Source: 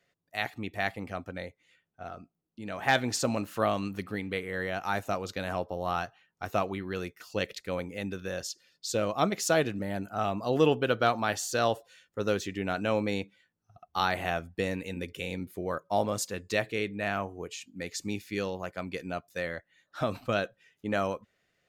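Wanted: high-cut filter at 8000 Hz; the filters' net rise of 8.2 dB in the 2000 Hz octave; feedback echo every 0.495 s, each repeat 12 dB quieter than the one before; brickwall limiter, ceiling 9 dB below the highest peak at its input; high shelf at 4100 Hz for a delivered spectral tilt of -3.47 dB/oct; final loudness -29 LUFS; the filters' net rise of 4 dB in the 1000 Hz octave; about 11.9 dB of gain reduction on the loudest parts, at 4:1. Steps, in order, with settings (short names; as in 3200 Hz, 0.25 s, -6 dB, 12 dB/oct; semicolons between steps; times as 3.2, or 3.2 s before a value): LPF 8000 Hz; bell 1000 Hz +3 dB; bell 2000 Hz +8.5 dB; high shelf 4100 Hz +4.5 dB; compressor 4:1, threshold -28 dBFS; limiter -21.5 dBFS; feedback echo 0.495 s, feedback 25%, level -12 dB; gain +6.5 dB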